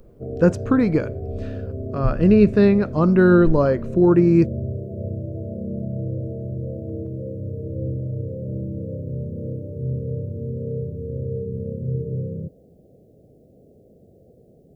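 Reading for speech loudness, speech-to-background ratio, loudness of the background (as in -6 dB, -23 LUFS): -17.5 LUFS, 12.0 dB, -29.5 LUFS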